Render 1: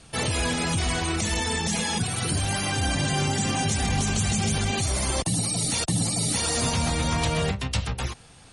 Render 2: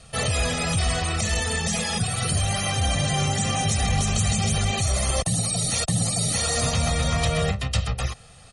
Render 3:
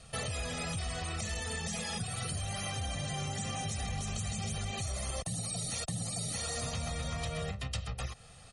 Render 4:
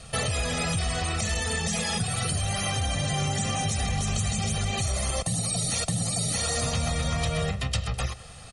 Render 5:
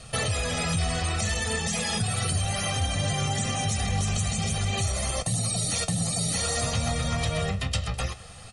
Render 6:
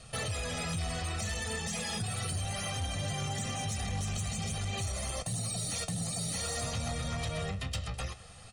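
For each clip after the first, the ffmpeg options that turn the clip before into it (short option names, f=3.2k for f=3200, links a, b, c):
-af "aecho=1:1:1.6:0.64"
-af "acompressor=threshold=-29dB:ratio=4,volume=-5.5dB"
-af "aecho=1:1:102|204|306|408|510:0.106|0.0625|0.0369|0.0218|0.0128,volume=9dB"
-af "flanger=delay=8:depth=4.2:regen=64:speed=0.57:shape=triangular,volume=4.5dB"
-af "asoftclip=type=tanh:threshold=-20dB,volume=-6.5dB"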